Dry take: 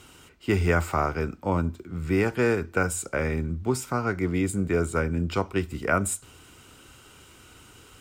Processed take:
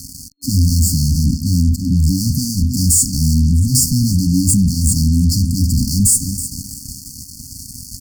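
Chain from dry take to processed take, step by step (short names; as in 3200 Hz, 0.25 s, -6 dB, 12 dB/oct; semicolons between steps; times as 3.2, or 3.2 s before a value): feedback echo 0.32 s, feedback 42%, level -21 dB; fuzz box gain 42 dB, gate -48 dBFS; FFT band-reject 290–4300 Hz; gain +3.5 dB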